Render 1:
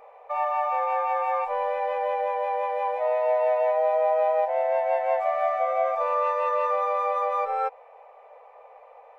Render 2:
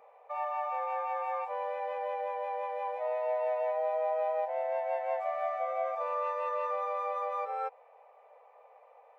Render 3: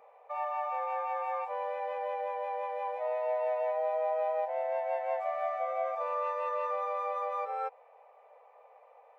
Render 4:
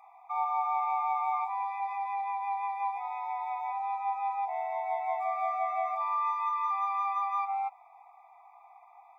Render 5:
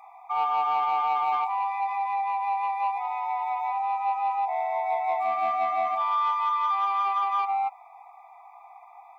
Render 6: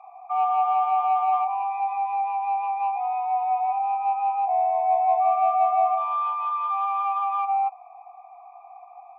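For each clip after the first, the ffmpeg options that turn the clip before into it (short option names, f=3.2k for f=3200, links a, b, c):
-af "highpass=110,volume=-8.5dB"
-af anull
-af "afftfilt=real='re*eq(mod(floor(b*sr/1024/660),2),1)':imag='im*eq(mod(floor(b*sr/1024/660),2),1)':win_size=1024:overlap=0.75,volume=5dB"
-af "asoftclip=type=tanh:threshold=-24dB,volume=6.5dB"
-filter_complex "[0:a]asplit=3[a][b][c];[a]bandpass=f=730:t=q:w=8,volume=0dB[d];[b]bandpass=f=1.09k:t=q:w=8,volume=-6dB[e];[c]bandpass=f=2.44k:t=q:w=8,volume=-9dB[f];[d][e][f]amix=inputs=3:normalize=0,volume=8dB"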